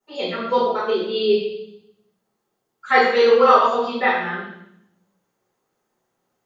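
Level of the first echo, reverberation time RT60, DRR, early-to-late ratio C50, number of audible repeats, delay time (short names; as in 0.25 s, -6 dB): none, 0.75 s, -15.5 dB, 1.5 dB, none, none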